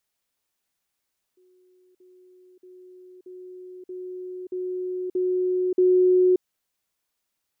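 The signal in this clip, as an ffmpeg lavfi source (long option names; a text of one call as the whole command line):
ffmpeg -f lavfi -i "aevalsrc='pow(10,(-56.5+6*floor(t/0.63))/20)*sin(2*PI*366*t)*clip(min(mod(t,0.63),0.58-mod(t,0.63))/0.005,0,1)':duration=5.04:sample_rate=44100" out.wav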